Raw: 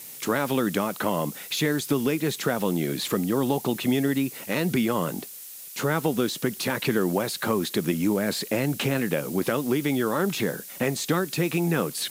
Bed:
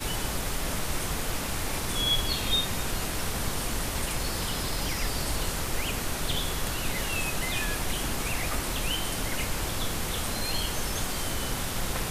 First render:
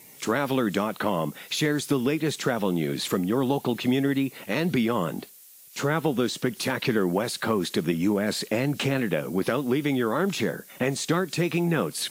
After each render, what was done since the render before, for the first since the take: noise print and reduce 9 dB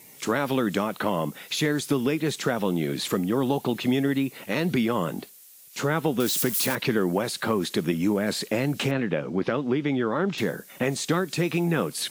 6.2–6.75 switching spikes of -21.5 dBFS; 8.91–10.38 air absorption 150 m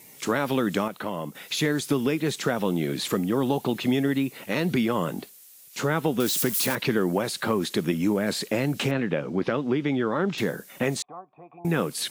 0.88–1.35 gain -5.5 dB; 11.02–11.65 vocal tract filter a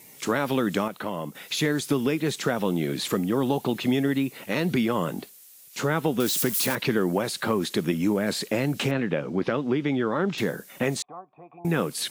nothing audible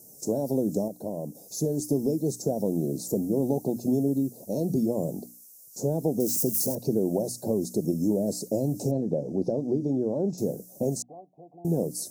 elliptic band-stop 670–5700 Hz, stop band 40 dB; notches 60/120/180/240/300 Hz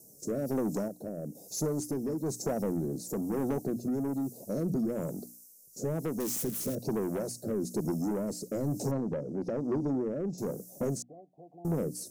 soft clip -24.5 dBFS, distortion -11 dB; rotary speaker horn 1.1 Hz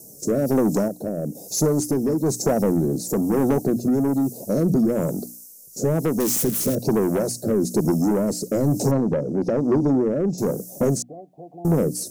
gain +11.5 dB

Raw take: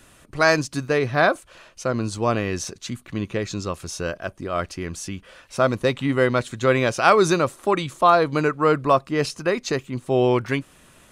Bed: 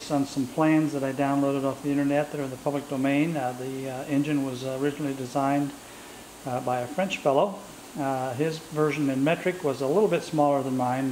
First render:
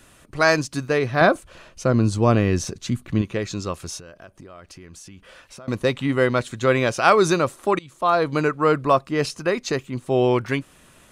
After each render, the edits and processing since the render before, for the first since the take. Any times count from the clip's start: 1.21–3.22 low shelf 360 Hz +9.5 dB; 3.98–5.68 compressor 8:1, threshold -39 dBFS; 7.79–8.29 fade in, from -22.5 dB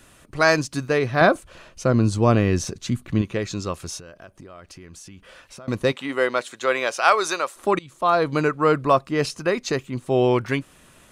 5.91–7.55 HPF 360 Hz -> 740 Hz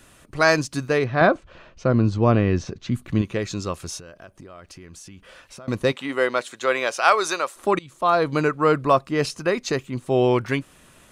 1.04–2.94 air absorption 170 m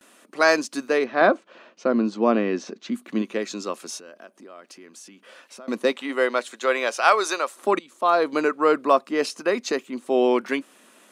elliptic high-pass 220 Hz, stop band 60 dB; gate with hold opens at -45 dBFS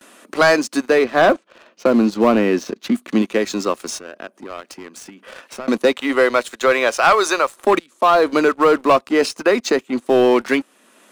sample leveller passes 2; three-band squash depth 40%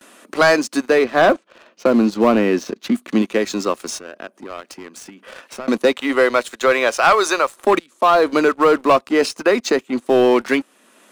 nothing audible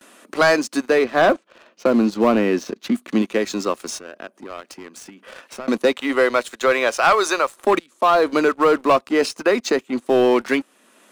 gain -2 dB

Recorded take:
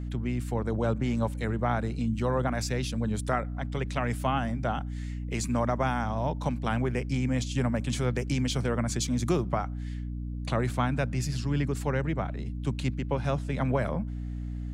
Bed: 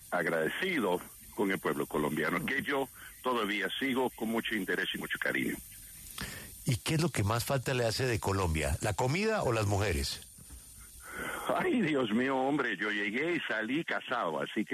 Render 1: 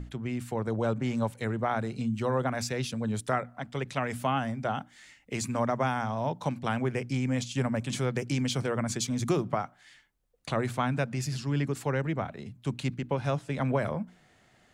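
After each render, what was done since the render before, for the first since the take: notches 60/120/180/240/300 Hz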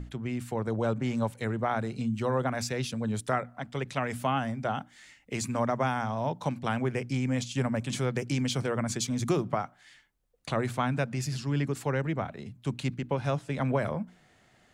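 nothing audible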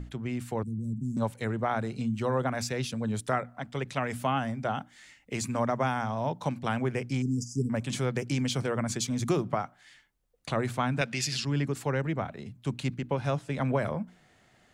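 0.63–1.17 elliptic band-stop 230–8100 Hz, stop band 60 dB; 7.22–7.7 brick-wall FIR band-stop 470–4700 Hz; 11.01–11.45 weighting filter D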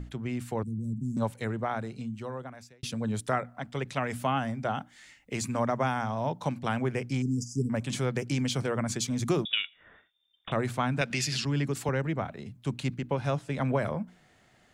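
1.31–2.83 fade out linear; 9.45–10.52 inverted band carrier 3600 Hz; 11.1–11.89 three-band squash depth 40%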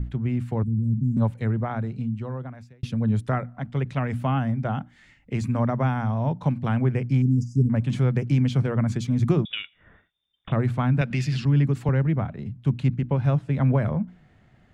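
tone controls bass +12 dB, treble -13 dB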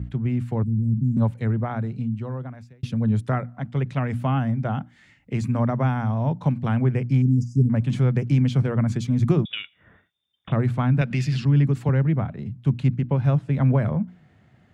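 HPF 91 Hz; low shelf 160 Hz +4.5 dB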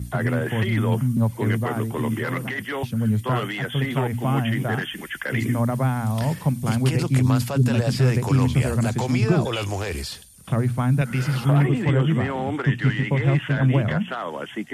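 add bed +3 dB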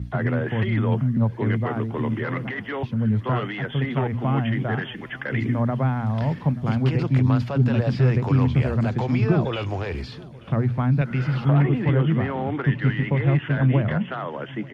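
air absorption 250 m; feedback echo 0.882 s, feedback 51%, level -22 dB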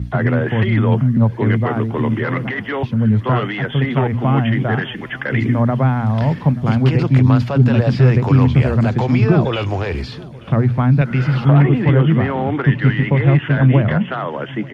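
gain +7 dB; limiter -1 dBFS, peak gain reduction 1 dB

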